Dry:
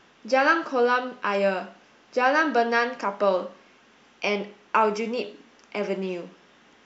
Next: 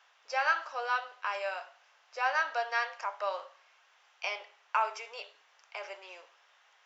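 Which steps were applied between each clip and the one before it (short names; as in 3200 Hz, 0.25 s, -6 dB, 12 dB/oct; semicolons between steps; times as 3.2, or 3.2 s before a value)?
inverse Chebyshev high-pass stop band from 200 Hz, stop band 60 dB; gain -7 dB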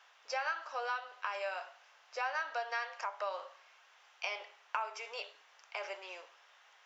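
compressor 3:1, threshold -37 dBFS, peak gain reduction 11.5 dB; gain +1.5 dB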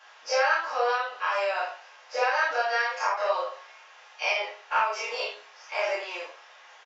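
spectral dilation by 60 ms; reverb, pre-delay 4 ms, DRR -9 dB; downsampling 16000 Hz; gain -1 dB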